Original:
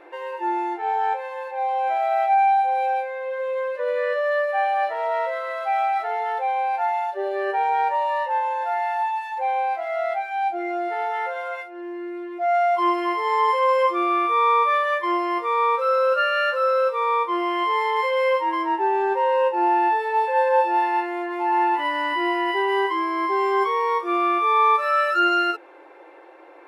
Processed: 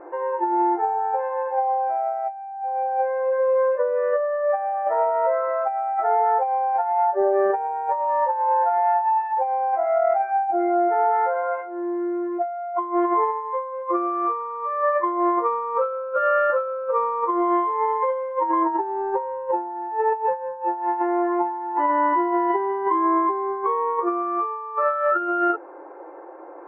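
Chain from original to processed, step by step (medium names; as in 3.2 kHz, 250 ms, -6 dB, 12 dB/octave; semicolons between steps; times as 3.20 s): low-pass 1.3 kHz 24 dB/octave; compressor with a negative ratio -25 dBFS, ratio -0.5; trim +3.5 dB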